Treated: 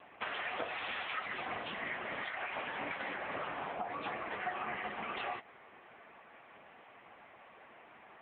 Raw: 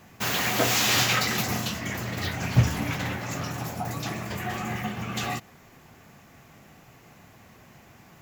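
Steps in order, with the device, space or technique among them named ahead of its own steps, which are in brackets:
0:02.23–0:03.05: high-pass filter 540 Hz → 160 Hz 12 dB per octave
voicemail (band-pass filter 440–2,900 Hz; downward compressor 10 to 1, threshold −35 dBFS, peak gain reduction 14.5 dB; level +3 dB; AMR narrowband 6.7 kbit/s 8,000 Hz)

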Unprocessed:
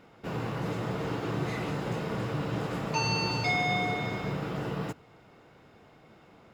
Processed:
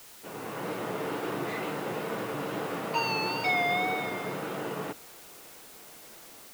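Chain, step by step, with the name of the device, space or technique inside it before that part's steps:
dictaphone (band-pass filter 280–3,800 Hz; automatic gain control gain up to 8 dB; tape wow and flutter; white noise bed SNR 17 dB)
level −6 dB

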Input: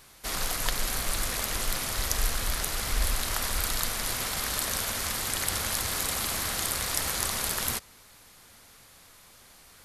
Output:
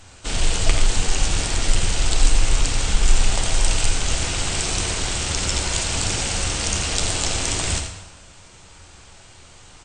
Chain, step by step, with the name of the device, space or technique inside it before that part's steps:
parametric band 130 Hz +5 dB 0.55 octaves
comb filter 7.1 ms, depth 54%
monster voice (pitch shifter −7 semitones; low-shelf EQ 160 Hz +8.5 dB; single-tap delay 84 ms −9 dB; convolution reverb RT60 0.95 s, pre-delay 27 ms, DRR 6 dB)
dynamic equaliser 1,100 Hz, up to −5 dB, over −45 dBFS, Q 1.3
level +4.5 dB

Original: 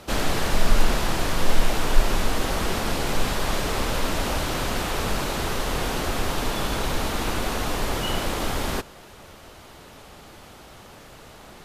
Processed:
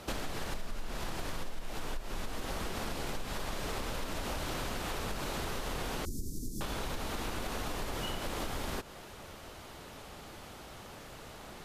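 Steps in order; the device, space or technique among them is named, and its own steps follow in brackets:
0:06.05–0:06.61: inverse Chebyshev band-stop filter 690–2,800 Hz, stop band 50 dB
serial compression, peaks first (downward compressor 5 to 1, threshold −26 dBFS, peak gain reduction 16.5 dB; downward compressor 2.5 to 1, threshold −31 dBFS, peak gain reduction 6.5 dB)
level −3 dB

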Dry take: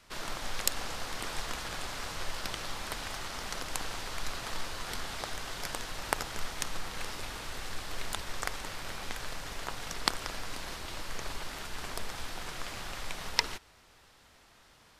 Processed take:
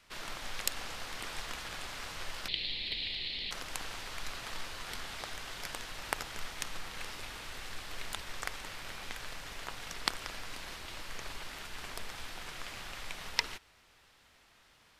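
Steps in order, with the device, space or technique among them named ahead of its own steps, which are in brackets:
presence and air boost (parametric band 2,500 Hz +5 dB 1.6 octaves; high-shelf EQ 12,000 Hz +3.5 dB)
0:02.48–0:03.51: drawn EQ curve 390 Hz 0 dB, 1,400 Hz −22 dB, 2,000 Hz +2 dB, 4,200 Hz +14 dB, 6,000 Hz −19 dB
level −6 dB

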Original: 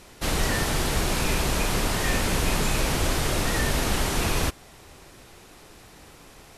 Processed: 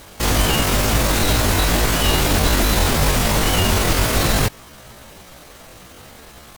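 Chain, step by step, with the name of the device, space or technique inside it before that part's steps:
chipmunk voice (pitch shifter +8 semitones)
level +7.5 dB

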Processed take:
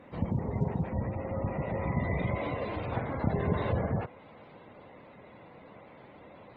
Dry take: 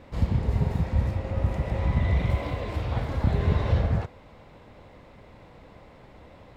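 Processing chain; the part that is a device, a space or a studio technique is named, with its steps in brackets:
noise-suppressed video call (high-pass filter 150 Hz 12 dB per octave; gate on every frequency bin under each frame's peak −25 dB strong; Opus 16 kbit/s 48,000 Hz)

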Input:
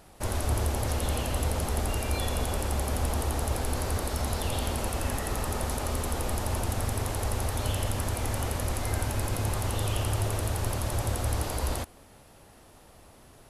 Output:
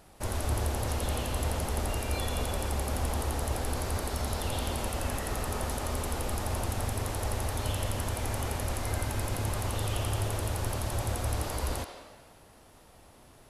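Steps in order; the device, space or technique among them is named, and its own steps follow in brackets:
filtered reverb send (on a send: high-pass filter 500 Hz + low-pass filter 5,500 Hz + convolution reverb RT60 1.4 s, pre-delay 79 ms, DRR 6 dB)
on the sum: level −2.5 dB

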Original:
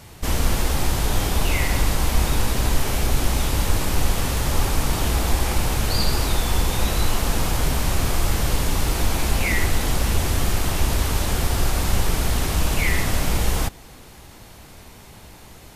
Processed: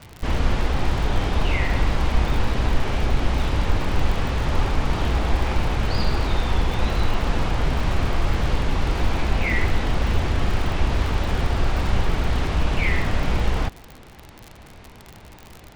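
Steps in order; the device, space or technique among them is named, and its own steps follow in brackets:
lo-fi chain (low-pass filter 3,200 Hz 12 dB per octave; tape wow and flutter; surface crackle 69 per second −28 dBFS)

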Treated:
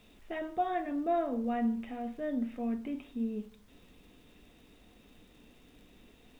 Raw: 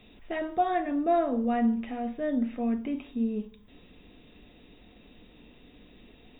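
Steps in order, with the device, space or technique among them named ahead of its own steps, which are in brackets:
vinyl LP (surface crackle; pink noise bed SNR 32 dB)
level −5.5 dB

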